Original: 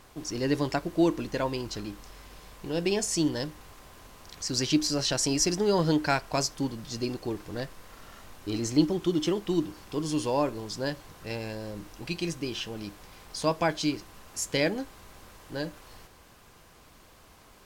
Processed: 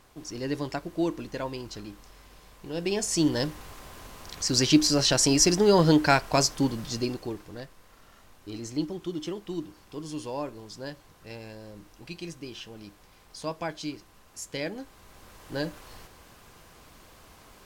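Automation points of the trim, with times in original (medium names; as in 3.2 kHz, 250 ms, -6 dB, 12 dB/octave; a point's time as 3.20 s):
2.68 s -4 dB
3.44 s +5 dB
6.84 s +5 dB
7.65 s -7 dB
14.64 s -7 dB
15.57 s +2.5 dB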